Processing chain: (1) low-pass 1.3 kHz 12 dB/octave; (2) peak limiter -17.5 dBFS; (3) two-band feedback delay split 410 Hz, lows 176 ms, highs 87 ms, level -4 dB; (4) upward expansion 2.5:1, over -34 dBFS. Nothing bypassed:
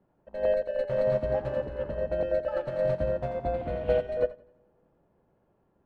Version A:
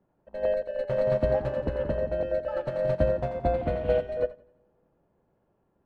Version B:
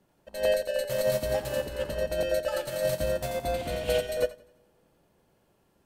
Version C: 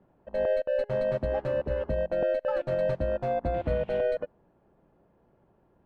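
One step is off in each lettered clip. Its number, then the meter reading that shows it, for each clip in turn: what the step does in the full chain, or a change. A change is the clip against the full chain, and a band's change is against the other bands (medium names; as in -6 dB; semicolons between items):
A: 2, crest factor change +1.5 dB; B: 1, 2 kHz band +6.5 dB; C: 3, momentary loudness spread change -3 LU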